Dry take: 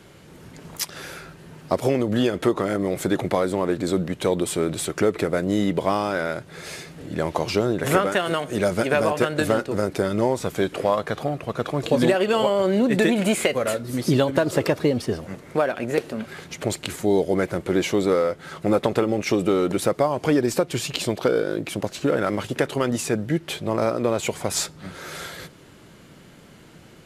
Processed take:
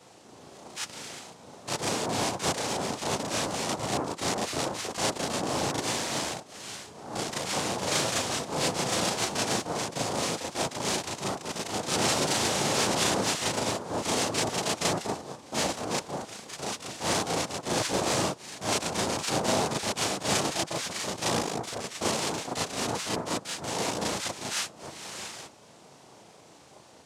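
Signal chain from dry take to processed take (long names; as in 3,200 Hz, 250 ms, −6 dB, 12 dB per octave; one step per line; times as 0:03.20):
wrap-around overflow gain 14.5 dB
cochlear-implant simulation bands 2
backwards echo 36 ms −4 dB
level −7 dB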